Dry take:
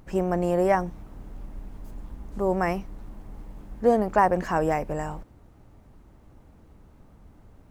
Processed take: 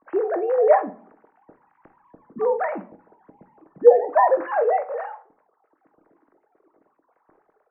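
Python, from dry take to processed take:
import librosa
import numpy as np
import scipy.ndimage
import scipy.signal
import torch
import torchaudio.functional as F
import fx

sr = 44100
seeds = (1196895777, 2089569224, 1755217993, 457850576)

y = fx.sine_speech(x, sr)
y = scipy.signal.sosfilt(scipy.signal.butter(4, 1800.0, 'lowpass', fs=sr, output='sos'), y)
y = fx.room_early_taps(y, sr, ms=(21, 48), db=(-12.5, -15.5))
y = fx.room_shoebox(y, sr, seeds[0], volume_m3=520.0, walls='furnished', distance_m=0.59)
y = y * librosa.db_to_amplitude(3.0)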